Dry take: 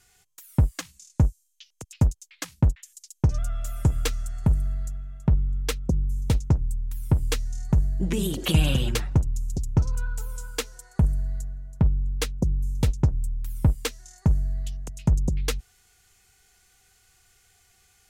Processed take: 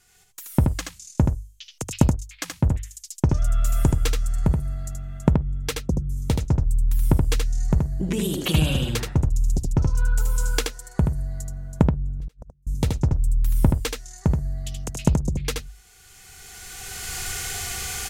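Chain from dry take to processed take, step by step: recorder AGC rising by 18 dB/s; notches 50/100 Hz; 12.2–12.67 flipped gate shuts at -25 dBFS, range -35 dB; echo 77 ms -4.5 dB

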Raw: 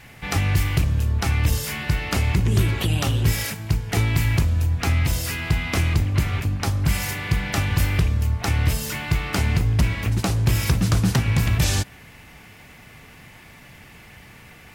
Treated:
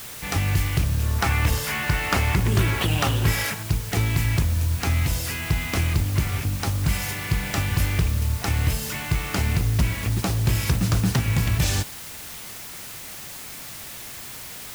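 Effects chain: 1.03–3.63 bell 1200 Hz +8 dB 2.4 oct; added noise white -36 dBFS; gain -2 dB

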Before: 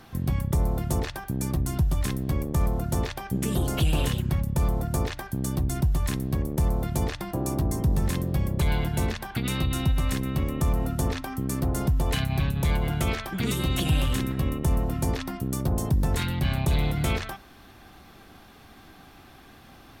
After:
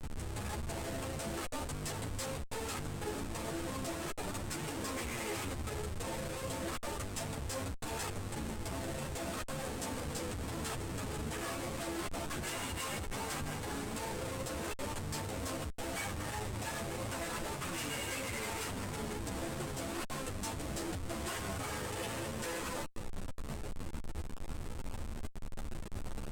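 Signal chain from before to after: weighting filter A; flange 0.16 Hz, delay 0.8 ms, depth 1.5 ms, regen +54%; notch comb 260 Hz; thinning echo 0.152 s, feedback 51%, high-pass 290 Hz, level -21.5 dB; compressor 4:1, threshold -47 dBFS, peak gain reduction 12.5 dB; HPF 73 Hz 24 dB/oct; Schmitt trigger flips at -50.5 dBFS; bell 11000 Hz +8 dB 0.44 oct; varispeed -24%; ensemble effect; gain +14 dB

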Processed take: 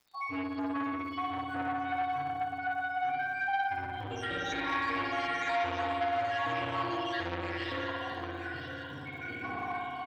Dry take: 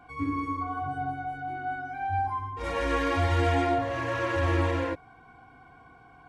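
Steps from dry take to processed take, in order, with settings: random spectral dropouts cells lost 73%; time stretch by phase-locked vocoder 1.6×; bell 3800 Hz +3 dB 1.5 oct; AGC gain up to 12 dB; speaker cabinet 170–6700 Hz, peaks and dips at 250 Hz -5 dB, 480 Hz -6 dB, 1400 Hz -5 dB; compressor 5:1, threshold -45 dBFS, peak gain reduction 26 dB; notch 550 Hz, Q 12; on a send: feedback echo 0.958 s, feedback 16%, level -10 dB; on the sum: crackle 160/s -61 dBFS; spring tank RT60 2.3 s, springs 57 ms, chirp 30 ms, DRR -3.5 dB; core saturation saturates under 1200 Hz; gain +8.5 dB

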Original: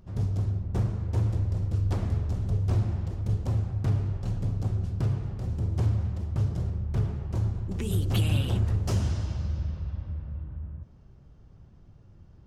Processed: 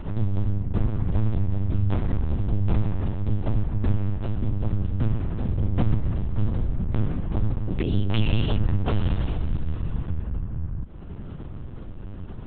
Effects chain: in parallel at +1.5 dB: limiter -26 dBFS, peak gain reduction 9.5 dB; on the sum: HPF 62 Hz 24 dB/oct; upward compressor, threshold -25 dBFS; LPC vocoder at 8 kHz pitch kept; gain +1.5 dB

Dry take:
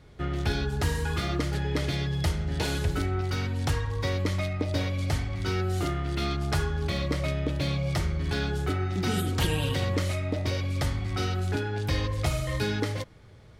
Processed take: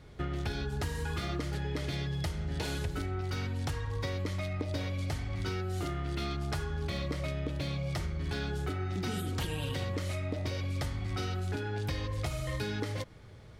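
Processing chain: compressor, threshold -31 dBFS, peak gain reduction 11 dB

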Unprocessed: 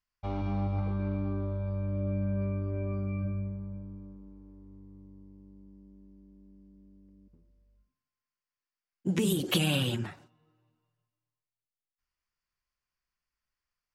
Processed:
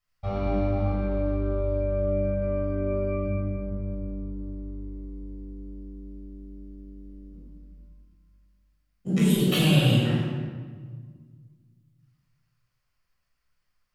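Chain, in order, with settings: compressor 1.5:1, threshold -38 dBFS, peak gain reduction 6 dB; reverb RT60 1.6 s, pre-delay 14 ms, DRR -6.5 dB

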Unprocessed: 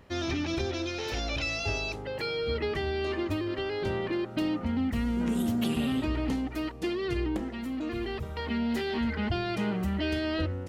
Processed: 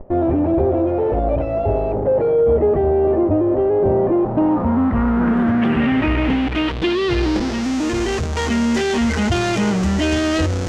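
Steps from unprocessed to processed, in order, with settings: bell 4400 Hz -8.5 dB 0.55 oct; in parallel at -4.5 dB: Schmitt trigger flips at -44 dBFS; on the sum: low-pass sweep 630 Hz -> 6600 Hz, 3.97–7.81; gain +8.5 dB

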